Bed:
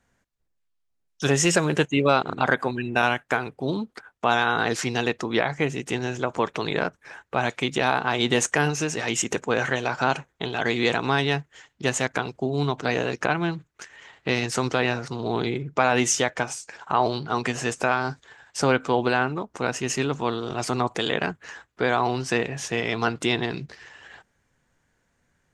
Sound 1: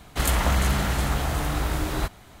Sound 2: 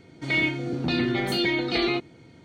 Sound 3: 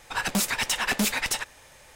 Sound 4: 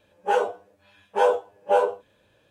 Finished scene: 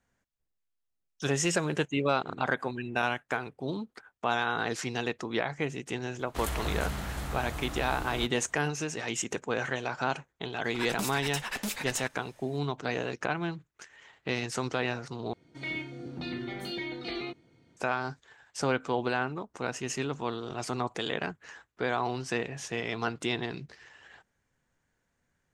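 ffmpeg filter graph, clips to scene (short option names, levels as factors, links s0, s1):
-filter_complex "[0:a]volume=0.422,asplit=2[s0][s1];[s0]atrim=end=15.334[s2];[2:a]atrim=end=2.44,asetpts=PTS-STARTPTS,volume=0.251[s3];[s1]atrim=start=17.766[s4];[1:a]atrim=end=2.4,asetpts=PTS-STARTPTS,volume=0.266,afade=t=in:d=0.004:c=hsin,afade=t=out:st=2.396:d=0.004:c=hsin,adelay=6190[s5];[3:a]atrim=end=1.95,asetpts=PTS-STARTPTS,volume=0.335,afade=t=in:d=0.004:c=hsin,afade=t=out:st=1.946:d=0.004:c=hsin,adelay=10640[s6];[s2][s3]acrossfade=d=0.004:c1=hsin:c2=hsin[s7];[s7][s4]acrossfade=d=0.004:c1=hsin:c2=hsin[s8];[s8][s5][s6]amix=inputs=3:normalize=0"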